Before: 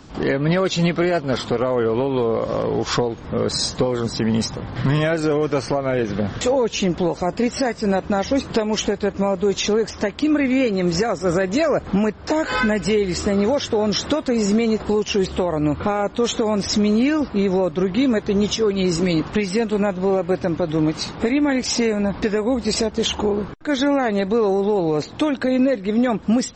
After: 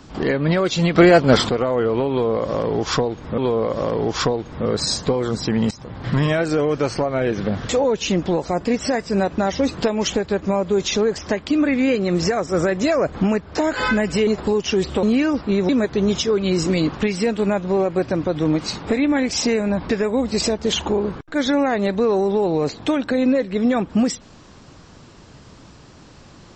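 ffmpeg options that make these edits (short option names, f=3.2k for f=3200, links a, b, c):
-filter_complex "[0:a]asplit=8[a][b][c][d][e][f][g][h];[a]atrim=end=0.952[i];[b]atrim=start=0.948:end=1.492,asetpts=PTS-STARTPTS,volume=8dB[j];[c]atrim=start=1.488:end=3.382[k];[d]atrim=start=2.098:end=4.43,asetpts=PTS-STARTPTS,afade=t=out:st=2.328:d=0.004:c=hsin:silence=0.125893[l];[e]atrim=start=4.43:end=12.992,asetpts=PTS-STARTPTS,afade=t=in:d=0.53:c=qsin:silence=0.125893[m];[f]atrim=start=14.688:end=15.452[n];[g]atrim=start=16.898:end=17.562[o];[h]atrim=start=18.018[p];[i][j]acrossfade=d=0.004:c1=hsin:c2=hsin[q];[q][k]acrossfade=d=0.004:c1=hsin:c2=hsin[r];[l][m]concat=n=2:v=0:a=1[s];[r][s]acrossfade=d=0.004:c1=hsin:c2=hsin[t];[t][n]acrossfade=d=0.004:c1=hsin:c2=hsin[u];[u][o]acrossfade=d=0.004:c1=hsin:c2=hsin[v];[v][p]acrossfade=d=0.004:c1=hsin:c2=hsin"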